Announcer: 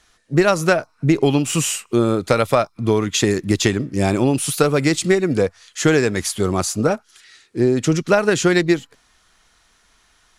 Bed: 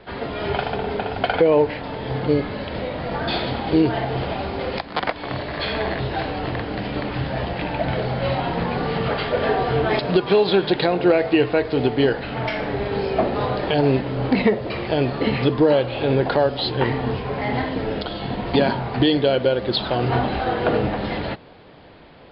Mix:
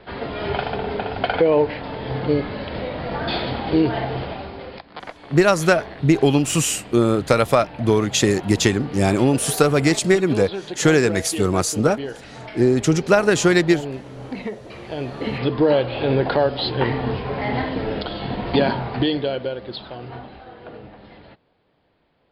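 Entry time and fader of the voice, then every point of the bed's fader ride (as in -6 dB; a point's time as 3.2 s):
5.00 s, 0.0 dB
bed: 4.06 s -0.5 dB
4.84 s -12 dB
14.62 s -12 dB
15.71 s 0 dB
18.8 s 0 dB
20.48 s -19 dB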